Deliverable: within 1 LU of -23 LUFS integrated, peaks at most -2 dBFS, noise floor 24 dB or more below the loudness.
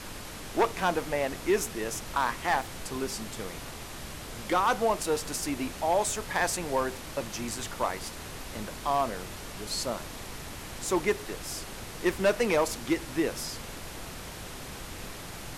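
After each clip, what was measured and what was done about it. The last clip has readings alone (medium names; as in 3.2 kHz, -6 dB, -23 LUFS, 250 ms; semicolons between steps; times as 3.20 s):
clipped samples 0.5%; clipping level -18.0 dBFS; noise floor -42 dBFS; noise floor target -55 dBFS; loudness -31.0 LUFS; peak level -18.0 dBFS; loudness target -23.0 LUFS
-> clip repair -18 dBFS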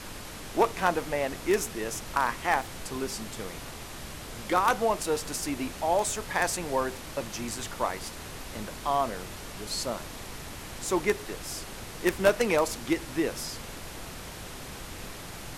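clipped samples 0.0%; noise floor -42 dBFS; noise floor target -55 dBFS
-> noise print and reduce 13 dB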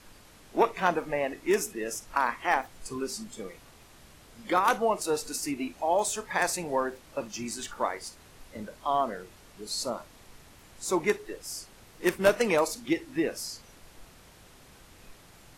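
noise floor -55 dBFS; loudness -29.5 LUFS; peak level -9.0 dBFS; loudness target -23.0 LUFS
-> trim +6.5 dB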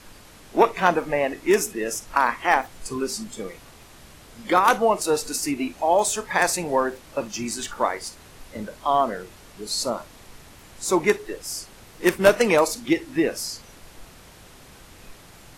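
loudness -23.0 LUFS; peak level -2.5 dBFS; noise floor -48 dBFS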